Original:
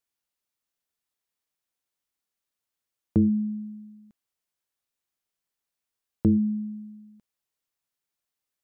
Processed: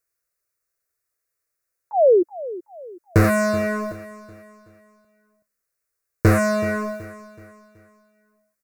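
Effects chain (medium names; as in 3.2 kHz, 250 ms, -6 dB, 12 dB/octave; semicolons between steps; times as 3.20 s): 3.24–3.92 s: peaking EQ 470 Hz +8 dB 1.7 oct; in parallel at -4.5 dB: fuzz box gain 42 dB, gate -46 dBFS; 1.91–2.23 s: on the sum: painted sound fall 330–900 Hz -20 dBFS; static phaser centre 870 Hz, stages 6; on a send: feedback delay 376 ms, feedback 41%, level -16.5 dB; on the sum: dynamic bell 310 Hz, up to -3 dB, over -43 dBFS, Q 4.8; trim +8 dB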